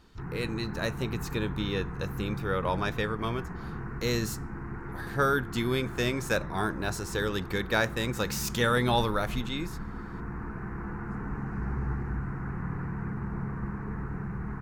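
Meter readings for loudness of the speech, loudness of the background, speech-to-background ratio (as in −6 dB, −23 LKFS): −30.5 LKFS, −37.5 LKFS, 7.0 dB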